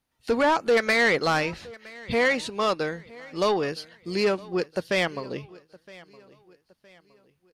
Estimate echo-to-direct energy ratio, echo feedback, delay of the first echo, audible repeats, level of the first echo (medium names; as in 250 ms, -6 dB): -21.5 dB, 40%, 965 ms, 2, -22.0 dB